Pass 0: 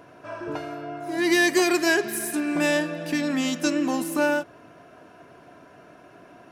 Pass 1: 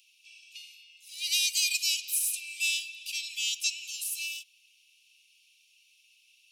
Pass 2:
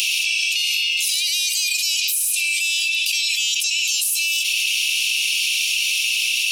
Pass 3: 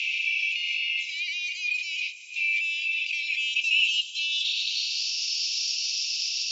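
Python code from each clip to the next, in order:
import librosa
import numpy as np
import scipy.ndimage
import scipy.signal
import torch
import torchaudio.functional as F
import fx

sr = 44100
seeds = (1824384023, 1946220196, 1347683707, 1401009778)

y1 = scipy.signal.sosfilt(scipy.signal.butter(16, 2500.0, 'highpass', fs=sr, output='sos'), x)
y1 = y1 * 10.0 ** (3.0 / 20.0)
y2 = fx.env_flatten(y1, sr, amount_pct=100)
y2 = y2 * 10.0 ** (4.0 / 20.0)
y3 = fx.filter_sweep_bandpass(y2, sr, from_hz=2200.0, to_hz=5000.0, start_s=3.31, end_s=5.13, q=6.5)
y3 = fx.brickwall_bandpass(y3, sr, low_hz=1700.0, high_hz=7600.0)
y3 = y3 * 10.0 ** (3.0 / 20.0)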